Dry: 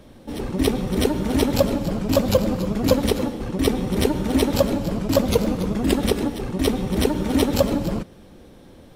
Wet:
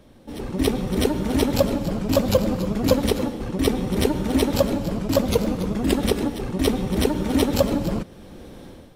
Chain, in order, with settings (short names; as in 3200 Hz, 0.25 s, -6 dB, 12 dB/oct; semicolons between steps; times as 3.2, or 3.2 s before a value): AGC gain up to 11.5 dB; gain -4.5 dB